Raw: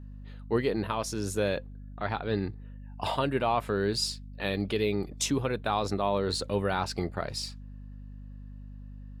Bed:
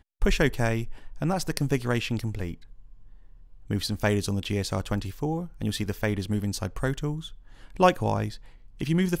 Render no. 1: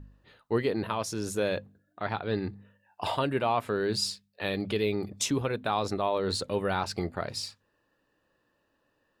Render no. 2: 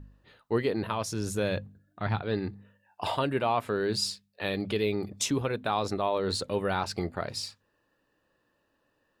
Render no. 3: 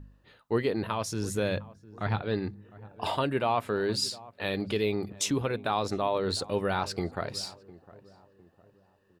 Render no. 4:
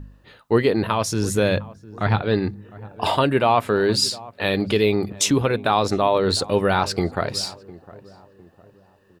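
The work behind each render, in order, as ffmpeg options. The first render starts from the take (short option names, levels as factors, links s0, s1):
-af "bandreject=f=50:t=h:w=4,bandreject=f=100:t=h:w=4,bandreject=f=150:t=h:w=4,bandreject=f=200:t=h:w=4,bandreject=f=250:t=h:w=4"
-filter_complex "[0:a]asettb=1/sr,asplit=3[s0][s1][s2];[s0]atrim=end=0.734[s3];[s1]atrim=start=0.73:end=2.22,asetpts=PTS-STARTPTS,afade=t=in:d=0.004:c=qsin,afade=t=out:st=1.486:d=0.004:c=qsin,asubboost=boost=7:cutoff=220[s4];[s2]atrim=start=2.216[s5];[s3][s4]acrossfade=d=0.004:c1=hsin:c2=qsin[s6];[s6][s5]acrossfade=d=0.004:c1=qsin:c2=hsin"
-filter_complex "[0:a]asplit=2[s0][s1];[s1]adelay=706,lowpass=f=1000:p=1,volume=0.119,asplit=2[s2][s3];[s3]adelay=706,lowpass=f=1000:p=1,volume=0.44,asplit=2[s4][s5];[s5]adelay=706,lowpass=f=1000:p=1,volume=0.44,asplit=2[s6][s7];[s7]adelay=706,lowpass=f=1000:p=1,volume=0.44[s8];[s0][s2][s4][s6][s8]amix=inputs=5:normalize=0"
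-af "volume=2.99"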